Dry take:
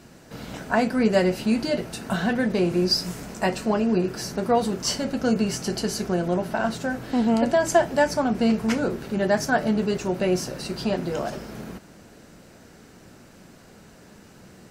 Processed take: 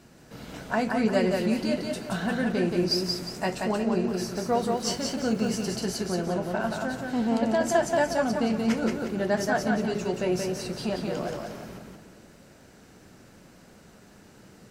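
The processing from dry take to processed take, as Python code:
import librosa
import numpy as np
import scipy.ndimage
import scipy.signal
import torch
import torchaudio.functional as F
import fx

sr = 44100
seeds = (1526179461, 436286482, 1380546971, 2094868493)

y = fx.dmg_crackle(x, sr, seeds[0], per_s=220.0, level_db=-34.0, at=(4.33, 5.79), fade=0.02)
y = fx.echo_warbled(y, sr, ms=178, feedback_pct=36, rate_hz=2.8, cents=56, wet_db=-3.5)
y = y * librosa.db_to_amplitude(-5.0)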